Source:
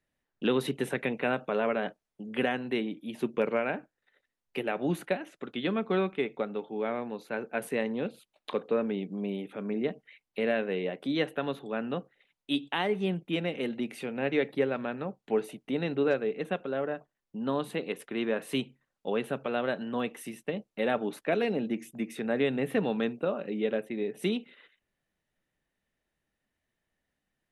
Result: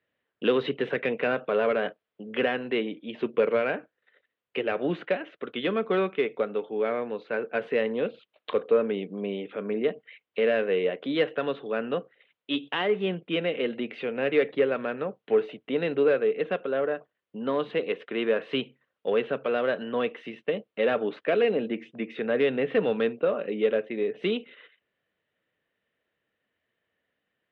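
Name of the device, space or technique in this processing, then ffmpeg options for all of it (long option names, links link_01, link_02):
overdrive pedal into a guitar cabinet: -filter_complex "[0:a]asplit=2[link_01][link_02];[link_02]highpass=frequency=720:poles=1,volume=13dB,asoftclip=type=tanh:threshold=-13.5dB[link_03];[link_01][link_03]amix=inputs=2:normalize=0,lowpass=frequency=2000:poles=1,volume=-6dB,highpass=76,equalizer=frequency=100:width_type=q:width=4:gain=6,equalizer=frequency=470:width_type=q:width=4:gain=6,equalizer=frequency=840:width_type=q:width=4:gain=-7,equalizer=frequency=3100:width_type=q:width=4:gain=4,lowpass=frequency=3900:width=0.5412,lowpass=frequency=3900:width=1.3066"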